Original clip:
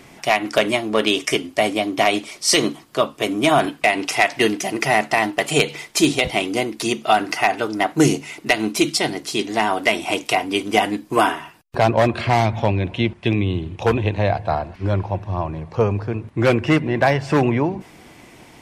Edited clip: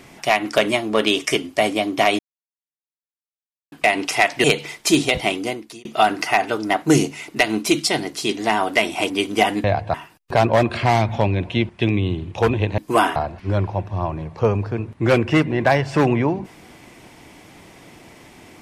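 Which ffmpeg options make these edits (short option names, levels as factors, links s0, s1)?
-filter_complex "[0:a]asplit=10[s0][s1][s2][s3][s4][s5][s6][s7][s8][s9];[s0]atrim=end=2.19,asetpts=PTS-STARTPTS,afade=t=out:st=2.186:d=0.004:c=hsin[s10];[s1]atrim=start=2.19:end=3.72,asetpts=PTS-STARTPTS,volume=0[s11];[s2]atrim=start=3.72:end=4.442,asetpts=PTS-STARTPTS,afade=t=in:d=0.004:c=hsin[s12];[s3]atrim=start=5.538:end=6.95,asetpts=PTS-STARTPTS,afade=t=out:st=0.842:d=0.57[s13];[s4]atrim=start=6.95:end=10.202,asetpts=PTS-STARTPTS,afade=t=in:d=0.004:c=hsin[s14];[s5]atrim=start=10.458:end=11.002[s15];[s6]atrim=start=14.218:end=14.522[s16];[s7]atrim=start=11.378:end=14.222[s17];[s8]atrim=start=10.998:end=11.382[s18];[s9]atrim=start=14.518[s19];[s10][s11][s12]concat=n=3:v=0:a=1[s20];[s13][s14]concat=n=2:v=0:a=1[s21];[s20][s21]acrossfade=d=0.004:c1=hsin:c2=hsin[s22];[s22][s15]acrossfade=d=0.004:c1=hsin:c2=hsin[s23];[s23][s16]acrossfade=d=0.004:c1=hsin:c2=hsin[s24];[s24][s17]acrossfade=d=0.004:c1=hsin:c2=hsin[s25];[s25][s18]acrossfade=d=0.004:c1=hsin:c2=hsin[s26];[s26][s19]acrossfade=d=0.004:c1=hsin:c2=hsin"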